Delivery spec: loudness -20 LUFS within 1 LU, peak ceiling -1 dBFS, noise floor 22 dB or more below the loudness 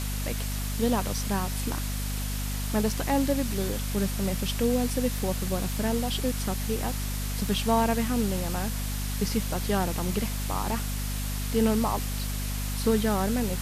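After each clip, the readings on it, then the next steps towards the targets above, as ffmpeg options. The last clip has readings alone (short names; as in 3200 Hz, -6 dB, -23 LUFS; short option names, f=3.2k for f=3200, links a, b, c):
hum 50 Hz; harmonics up to 250 Hz; hum level -29 dBFS; noise floor -31 dBFS; noise floor target -51 dBFS; loudness -28.5 LUFS; peak -11.0 dBFS; loudness target -20.0 LUFS
-> -af "bandreject=f=50:t=h:w=6,bandreject=f=100:t=h:w=6,bandreject=f=150:t=h:w=6,bandreject=f=200:t=h:w=6,bandreject=f=250:t=h:w=6"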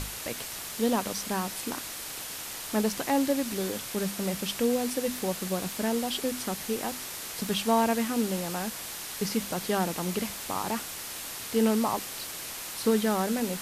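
hum none; noise floor -39 dBFS; noise floor target -52 dBFS
-> -af "afftdn=nr=13:nf=-39"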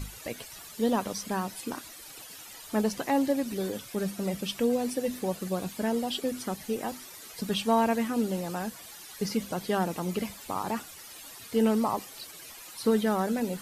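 noise floor -47 dBFS; noise floor target -52 dBFS
-> -af "afftdn=nr=6:nf=-47"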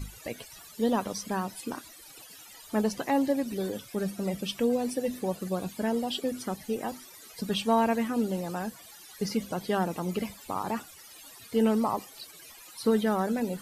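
noise floor -50 dBFS; noise floor target -52 dBFS
-> -af "afftdn=nr=6:nf=-50"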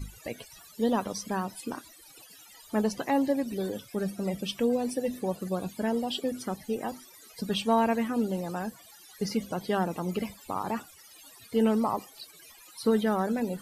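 noise floor -53 dBFS; loudness -30.5 LUFS; peak -13.0 dBFS; loudness target -20.0 LUFS
-> -af "volume=10.5dB"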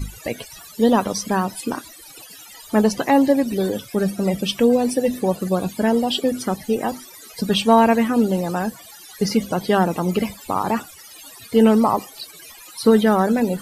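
loudness -20.0 LUFS; peak -2.5 dBFS; noise floor -43 dBFS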